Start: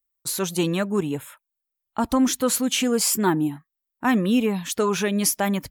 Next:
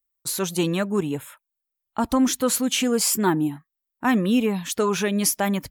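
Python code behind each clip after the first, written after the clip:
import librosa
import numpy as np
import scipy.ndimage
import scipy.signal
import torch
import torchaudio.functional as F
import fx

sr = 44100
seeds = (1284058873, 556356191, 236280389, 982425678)

y = x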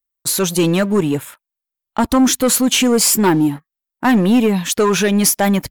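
y = fx.leveller(x, sr, passes=2)
y = y * 10.0 ** (2.0 / 20.0)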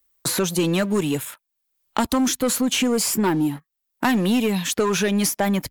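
y = fx.band_squash(x, sr, depth_pct=70)
y = y * 10.0 ** (-6.5 / 20.0)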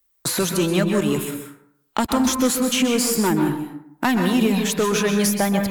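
y = fx.rev_plate(x, sr, seeds[0], rt60_s=0.68, hf_ratio=0.5, predelay_ms=115, drr_db=4.0)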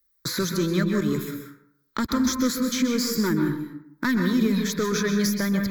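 y = fx.fixed_phaser(x, sr, hz=2800.0, stages=6)
y = y * 10.0 ** (-1.5 / 20.0)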